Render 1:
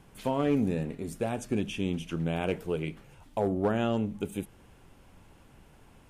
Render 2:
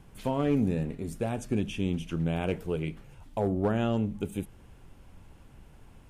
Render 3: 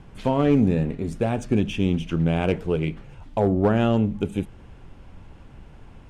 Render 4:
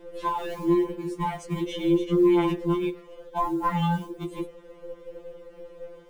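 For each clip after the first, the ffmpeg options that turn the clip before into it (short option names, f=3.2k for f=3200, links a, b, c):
-af "lowshelf=f=140:g=8.5,volume=-1.5dB"
-af "adynamicsmooth=sensitivity=8:basefreq=5.8k,volume=7.5dB"
-af "afftfilt=real='real(if(between(b,1,1008),(2*floor((b-1)/24)+1)*24-b,b),0)':imag='imag(if(between(b,1,1008),(2*floor((b-1)/24)+1)*24-b,b),0)*if(between(b,1,1008),-1,1)':win_size=2048:overlap=0.75,acrusher=bits=9:mode=log:mix=0:aa=0.000001,afftfilt=real='re*2.83*eq(mod(b,8),0)':imag='im*2.83*eq(mod(b,8),0)':win_size=2048:overlap=0.75,volume=-1dB"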